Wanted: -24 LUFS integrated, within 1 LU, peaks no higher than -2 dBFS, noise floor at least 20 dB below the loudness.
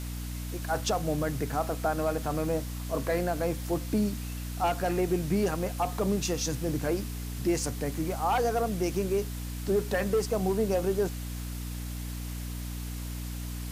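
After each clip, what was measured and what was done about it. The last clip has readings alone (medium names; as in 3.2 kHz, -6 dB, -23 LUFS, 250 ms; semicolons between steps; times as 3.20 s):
hum 60 Hz; highest harmonic 300 Hz; hum level -34 dBFS; noise floor -36 dBFS; noise floor target -51 dBFS; loudness -30.5 LUFS; peak level -16.0 dBFS; loudness target -24.0 LUFS
-> hum notches 60/120/180/240/300 Hz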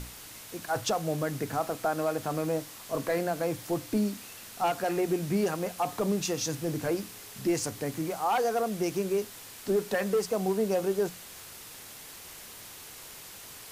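hum not found; noise floor -46 dBFS; noise floor target -51 dBFS
-> noise reduction 6 dB, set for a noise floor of -46 dBFS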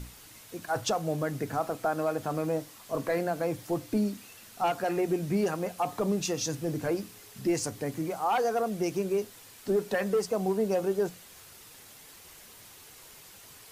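noise floor -52 dBFS; loudness -30.5 LUFS; peak level -17.5 dBFS; loudness target -24.0 LUFS
-> trim +6.5 dB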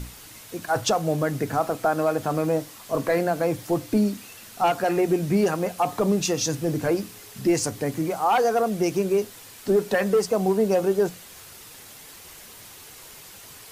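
loudness -24.0 LUFS; peak level -11.0 dBFS; noise floor -45 dBFS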